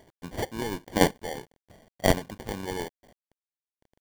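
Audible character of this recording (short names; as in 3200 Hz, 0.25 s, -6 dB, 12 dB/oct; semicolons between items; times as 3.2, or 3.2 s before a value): aliases and images of a low sample rate 1300 Hz, jitter 0%; chopped level 0.99 Hz, depth 65%, duty 10%; a quantiser's noise floor 10-bit, dither none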